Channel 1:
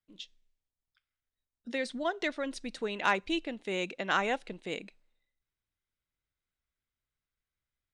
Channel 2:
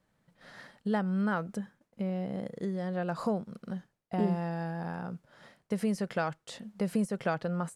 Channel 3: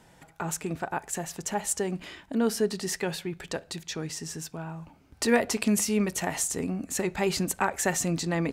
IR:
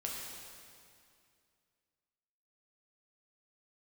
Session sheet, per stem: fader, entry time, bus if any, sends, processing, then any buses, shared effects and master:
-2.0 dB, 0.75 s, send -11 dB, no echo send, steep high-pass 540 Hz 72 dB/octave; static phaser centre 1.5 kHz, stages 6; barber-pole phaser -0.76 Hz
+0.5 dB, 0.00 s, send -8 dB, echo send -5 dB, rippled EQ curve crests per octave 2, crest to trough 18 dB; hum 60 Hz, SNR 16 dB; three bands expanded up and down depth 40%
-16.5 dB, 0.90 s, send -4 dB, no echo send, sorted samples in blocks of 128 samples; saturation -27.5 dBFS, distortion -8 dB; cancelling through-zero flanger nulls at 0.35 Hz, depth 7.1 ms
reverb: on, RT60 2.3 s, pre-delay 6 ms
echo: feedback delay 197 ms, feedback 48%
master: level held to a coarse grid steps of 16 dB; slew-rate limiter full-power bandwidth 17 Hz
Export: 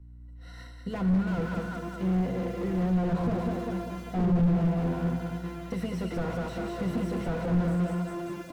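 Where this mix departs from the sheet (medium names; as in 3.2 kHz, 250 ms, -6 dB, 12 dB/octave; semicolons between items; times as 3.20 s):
stem 1: muted; stem 3 -16.5 dB -> -4.5 dB; master: missing level held to a coarse grid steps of 16 dB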